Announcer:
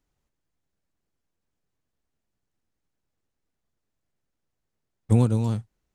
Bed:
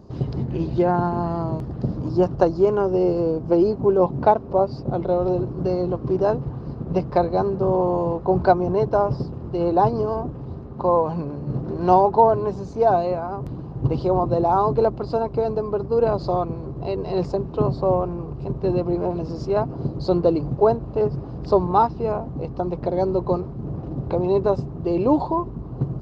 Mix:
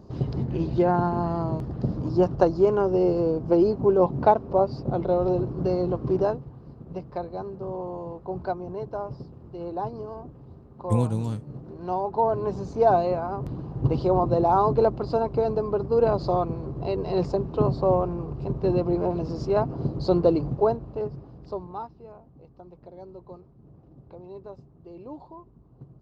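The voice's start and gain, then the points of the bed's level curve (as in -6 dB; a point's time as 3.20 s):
5.80 s, -4.0 dB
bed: 6.22 s -2 dB
6.45 s -13 dB
11.94 s -13 dB
12.57 s -1.5 dB
20.38 s -1.5 dB
22.10 s -22 dB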